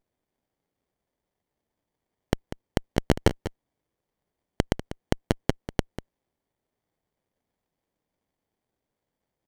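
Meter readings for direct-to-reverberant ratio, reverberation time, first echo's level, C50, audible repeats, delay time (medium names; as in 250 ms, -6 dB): no reverb, no reverb, -13.0 dB, no reverb, 1, 194 ms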